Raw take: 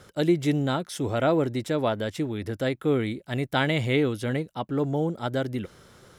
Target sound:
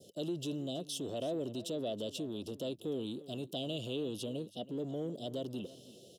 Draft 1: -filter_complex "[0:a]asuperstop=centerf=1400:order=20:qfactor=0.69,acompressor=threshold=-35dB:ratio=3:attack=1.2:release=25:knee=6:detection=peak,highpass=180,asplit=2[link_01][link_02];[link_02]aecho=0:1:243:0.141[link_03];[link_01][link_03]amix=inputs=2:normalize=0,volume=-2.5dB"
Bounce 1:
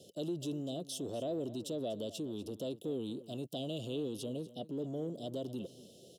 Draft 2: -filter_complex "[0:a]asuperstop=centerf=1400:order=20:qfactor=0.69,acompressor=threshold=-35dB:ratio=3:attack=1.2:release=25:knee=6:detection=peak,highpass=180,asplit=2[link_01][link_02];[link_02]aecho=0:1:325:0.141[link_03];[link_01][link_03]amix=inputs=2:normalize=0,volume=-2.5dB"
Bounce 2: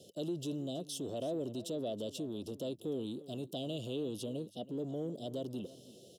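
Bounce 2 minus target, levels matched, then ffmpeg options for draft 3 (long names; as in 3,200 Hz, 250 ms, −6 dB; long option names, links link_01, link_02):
2,000 Hz band −4.5 dB
-filter_complex "[0:a]asuperstop=centerf=1400:order=20:qfactor=0.69,acompressor=threshold=-35dB:ratio=3:attack=1.2:release=25:knee=6:detection=peak,highpass=180,adynamicequalizer=threshold=0.00141:dfrequency=2200:dqfactor=0.82:tfrequency=2200:tqfactor=0.82:attack=5:release=100:ratio=0.4:range=3:mode=boostabove:tftype=bell,asplit=2[link_01][link_02];[link_02]aecho=0:1:325:0.141[link_03];[link_01][link_03]amix=inputs=2:normalize=0,volume=-2.5dB"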